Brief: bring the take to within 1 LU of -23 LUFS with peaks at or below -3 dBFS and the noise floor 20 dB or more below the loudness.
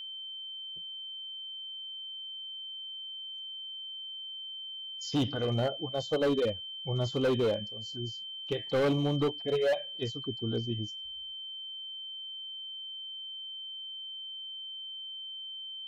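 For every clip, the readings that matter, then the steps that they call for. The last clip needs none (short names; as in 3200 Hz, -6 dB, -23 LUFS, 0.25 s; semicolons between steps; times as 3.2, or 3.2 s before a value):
clipped 1.7%; flat tops at -23.5 dBFS; steady tone 3100 Hz; tone level -39 dBFS; loudness -34.5 LUFS; peak -23.5 dBFS; loudness target -23.0 LUFS
-> clip repair -23.5 dBFS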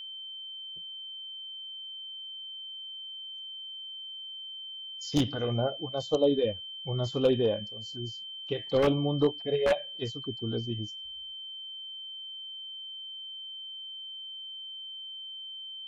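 clipped 0.0%; steady tone 3100 Hz; tone level -39 dBFS
-> notch 3100 Hz, Q 30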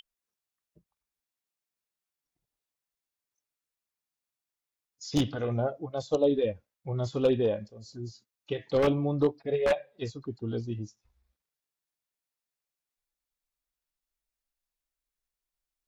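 steady tone none; loudness -29.5 LUFS; peak -13.5 dBFS; loudness target -23.0 LUFS
-> gain +6.5 dB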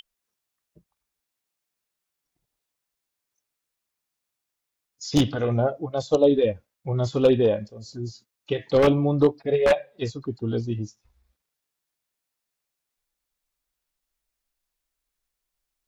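loudness -23.0 LUFS; peak -7.0 dBFS; noise floor -84 dBFS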